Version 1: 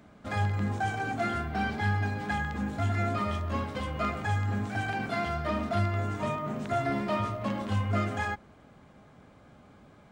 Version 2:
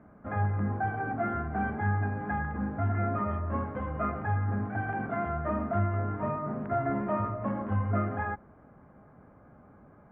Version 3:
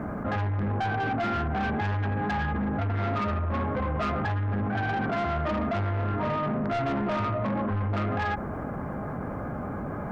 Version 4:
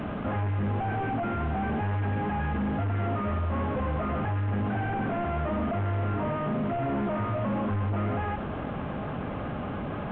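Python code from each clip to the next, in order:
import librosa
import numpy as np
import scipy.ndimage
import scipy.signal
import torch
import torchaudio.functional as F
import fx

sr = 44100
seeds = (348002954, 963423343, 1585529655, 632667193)

y1 = scipy.signal.sosfilt(scipy.signal.cheby2(4, 60, 5400.0, 'lowpass', fs=sr, output='sos'), x)
y2 = 10.0 ** (-32.0 / 20.0) * np.tanh(y1 / 10.0 ** (-32.0 / 20.0))
y2 = fx.env_flatten(y2, sr, amount_pct=70)
y2 = F.gain(torch.from_numpy(y2), 6.5).numpy()
y3 = fx.delta_mod(y2, sr, bps=16000, step_db=-39.0)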